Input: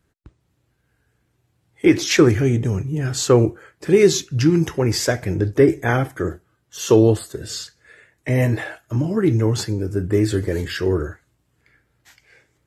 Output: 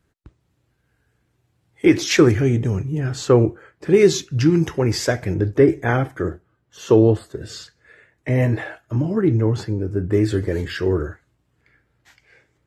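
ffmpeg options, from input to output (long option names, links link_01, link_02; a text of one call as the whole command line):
ffmpeg -i in.wav -af "asetnsamples=nb_out_samples=441:pad=0,asendcmd='2.32 lowpass f 5300;3 lowpass f 2400;3.94 lowpass f 5600;5.34 lowpass f 3000;6.3 lowpass f 1700;7.41 lowpass f 2700;9.21 lowpass f 1500;10.11 lowpass f 3900',lowpass=frequency=9400:poles=1" out.wav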